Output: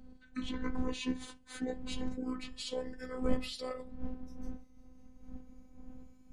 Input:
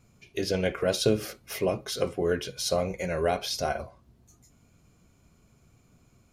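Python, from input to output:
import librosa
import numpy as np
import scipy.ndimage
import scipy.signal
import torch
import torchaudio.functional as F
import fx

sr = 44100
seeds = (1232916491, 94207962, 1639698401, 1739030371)

y = fx.pitch_glide(x, sr, semitones=-8.0, runs='ending unshifted')
y = fx.dmg_wind(y, sr, seeds[0], corner_hz=120.0, level_db=-30.0)
y = fx.robotise(y, sr, hz=255.0)
y = y * librosa.db_to_amplitude(-7.0)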